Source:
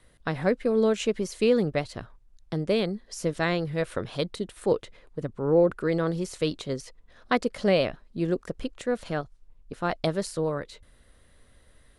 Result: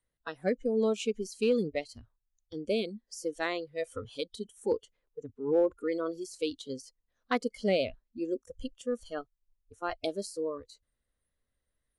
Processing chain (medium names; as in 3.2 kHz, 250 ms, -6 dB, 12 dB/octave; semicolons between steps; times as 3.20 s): spectral noise reduction 21 dB; in parallel at -9 dB: overload inside the chain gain 15.5 dB; on the sum: trim -7.5 dB